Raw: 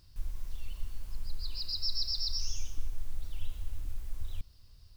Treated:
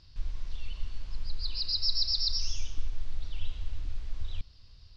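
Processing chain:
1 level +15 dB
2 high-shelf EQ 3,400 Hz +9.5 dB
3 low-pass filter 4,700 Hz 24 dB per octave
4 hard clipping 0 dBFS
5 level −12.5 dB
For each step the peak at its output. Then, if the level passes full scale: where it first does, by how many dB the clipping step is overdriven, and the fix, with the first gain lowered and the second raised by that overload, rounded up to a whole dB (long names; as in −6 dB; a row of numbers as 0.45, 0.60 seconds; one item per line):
−3.5, −0.5, −2.0, −2.0, −14.5 dBFS
no step passes full scale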